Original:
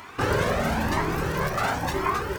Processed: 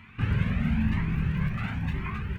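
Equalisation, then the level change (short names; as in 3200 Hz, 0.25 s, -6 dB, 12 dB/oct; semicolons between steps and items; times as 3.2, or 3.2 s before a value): EQ curve 220 Hz 0 dB, 310 Hz -18 dB, 570 Hz -26 dB, 1400 Hz -16 dB, 2500 Hz -6 dB, 5300 Hz -28 dB; +3.5 dB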